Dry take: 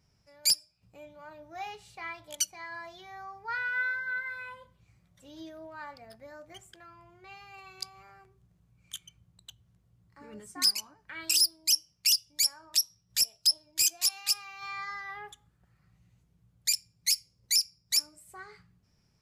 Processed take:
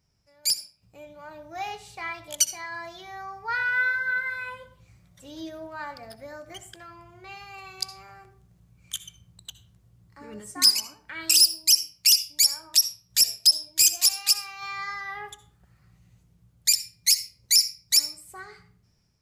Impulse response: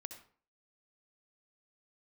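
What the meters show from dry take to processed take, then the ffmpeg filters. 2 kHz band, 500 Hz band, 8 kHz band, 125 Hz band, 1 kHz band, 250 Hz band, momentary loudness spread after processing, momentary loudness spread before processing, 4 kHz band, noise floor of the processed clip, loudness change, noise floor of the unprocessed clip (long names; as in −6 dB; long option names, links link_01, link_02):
+6.5 dB, +6.0 dB, +7.0 dB, can't be measured, +5.5 dB, +6.5 dB, 21 LU, 20 LU, +6.5 dB, −64 dBFS, +6.5 dB, −70 dBFS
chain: -filter_complex "[0:a]bass=frequency=250:gain=-5,treble=frequency=4000:gain=3,dynaudnorm=framelen=340:gausssize=5:maxgain=10dB,asplit=2[link_01][link_02];[1:a]atrim=start_sample=2205,lowshelf=frequency=240:gain=11.5[link_03];[link_02][link_03]afir=irnorm=-1:irlink=0,volume=3.5dB[link_04];[link_01][link_04]amix=inputs=2:normalize=0,volume=-9dB"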